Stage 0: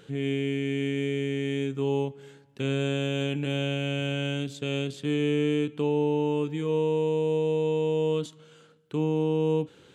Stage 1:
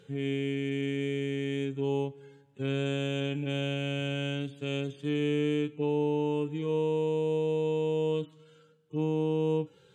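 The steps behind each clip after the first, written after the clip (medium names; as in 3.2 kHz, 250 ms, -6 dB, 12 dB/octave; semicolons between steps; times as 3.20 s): harmonic-percussive separation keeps harmonic; trim -3 dB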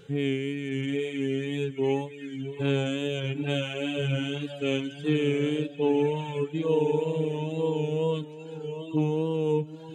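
echo that smears into a reverb 762 ms, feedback 41%, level -8 dB; reverb removal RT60 1.4 s; wow and flutter 53 cents; trim +6 dB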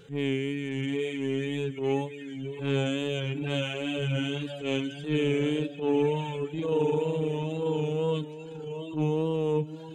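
transient shaper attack -10 dB, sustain +2 dB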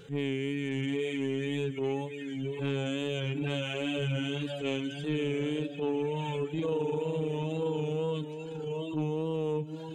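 compression, threshold -29 dBFS, peak gain reduction 8.5 dB; trim +1.5 dB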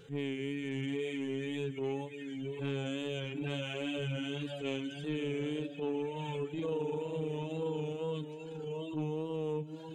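flange 1.1 Hz, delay 2.4 ms, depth 1.7 ms, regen -84%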